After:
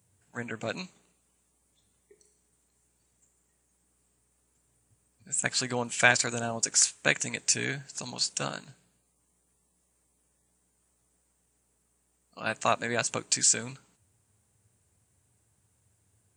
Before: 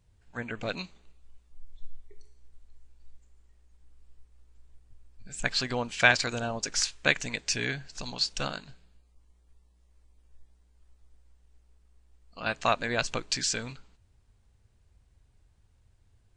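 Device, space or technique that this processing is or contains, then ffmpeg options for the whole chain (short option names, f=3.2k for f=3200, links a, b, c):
budget condenser microphone: -af "highpass=f=100:w=0.5412,highpass=f=100:w=1.3066,highshelf=f=6.3k:t=q:w=1.5:g=11.5"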